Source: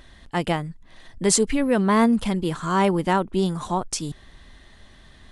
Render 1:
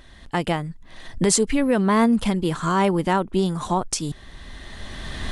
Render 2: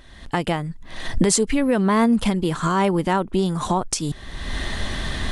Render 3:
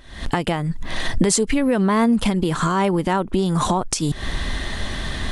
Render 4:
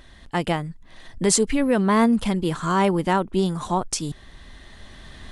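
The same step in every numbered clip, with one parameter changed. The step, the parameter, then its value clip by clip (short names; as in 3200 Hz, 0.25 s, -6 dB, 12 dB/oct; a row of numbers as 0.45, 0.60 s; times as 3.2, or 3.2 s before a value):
recorder AGC, rising by: 14, 34, 84, 5.5 dB/s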